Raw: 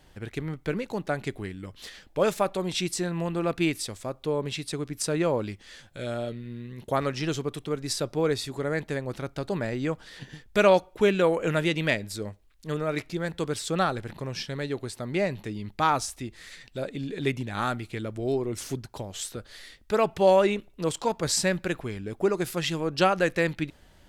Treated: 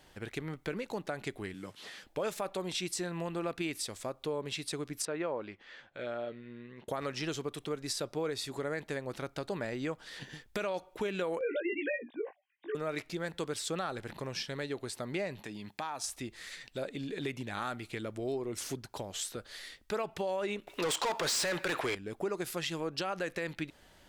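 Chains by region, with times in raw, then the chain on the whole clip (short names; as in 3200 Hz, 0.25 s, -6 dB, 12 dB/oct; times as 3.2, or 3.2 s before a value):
1.54–2.04 delta modulation 64 kbps, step -56 dBFS + HPF 110 Hz 24 dB/oct
5.05–6.88 LPF 2400 Hz + low shelf 190 Hz -12 dB
11.39–12.75 sine-wave speech + Butterworth band-stop 1300 Hz, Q 4 + doubler 17 ms -2 dB
15.42–16.04 Bessel high-pass 180 Hz + comb 1.2 ms, depth 31% + compressor 3:1, threshold -34 dBFS
20.67–21.95 bell 200 Hz -12 dB 0.29 oct + overdrive pedal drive 28 dB, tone 5700 Hz, clips at -12.5 dBFS
whole clip: low shelf 200 Hz -9.5 dB; limiter -19 dBFS; compressor 2:1, threshold -36 dBFS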